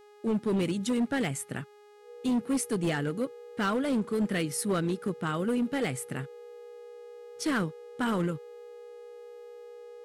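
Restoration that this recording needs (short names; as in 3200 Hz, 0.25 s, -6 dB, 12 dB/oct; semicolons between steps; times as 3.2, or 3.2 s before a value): clip repair -23 dBFS; de-hum 415.4 Hz, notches 39; notch 480 Hz, Q 30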